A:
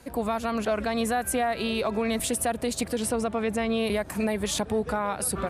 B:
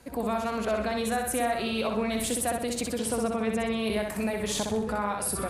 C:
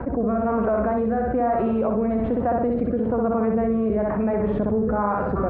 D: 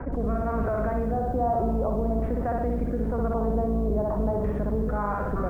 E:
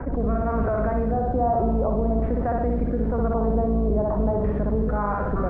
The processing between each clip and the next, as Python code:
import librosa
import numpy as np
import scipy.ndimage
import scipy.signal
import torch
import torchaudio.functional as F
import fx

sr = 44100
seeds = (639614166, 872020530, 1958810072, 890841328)

y1 = fx.echo_feedback(x, sr, ms=63, feedback_pct=44, wet_db=-4.0)
y1 = y1 * librosa.db_to_amplitude(-3.0)
y2 = fx.rotary(y1, sr, hz=1.1)
y2 = scipy.signal.sosfilt(scipy.signal.butter(4, 1300.0, 'lowpass', fs=sr, output='sos'), y2)
y2 = fx.env_flatten(y2, sr, amount_pct=70)
y2 = y2 * librosa.db_to_amplitude(5.5)
y3 = fx.octave_divider(y2, sr, octaves=2, level_db=3.0)
y3 = fx.filter_lfo_lowpass(y3, sr, shape='square', hz=0.45, low_hz=920.0, high_hz=2100.0, q=1.6)
y3 = fx.echo_crushed(y3, sr, ms=123, feedback_pct=55, bits=7, wet_db=-14.5)
y3 = y3 * librosa.db_to_amplitude(-7.0)
y4 = fx.air_absorb(y3, sr, metres=180.0)
y4 = y4 * librosa.db_to_amplitude(3.5)